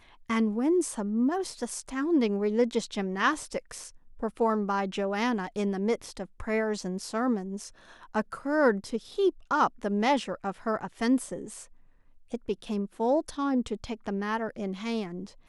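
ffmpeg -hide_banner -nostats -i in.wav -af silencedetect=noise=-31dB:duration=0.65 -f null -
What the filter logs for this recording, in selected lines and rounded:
silence_start: 11.54
silence_end: 12.34 | silence_duration: 0.80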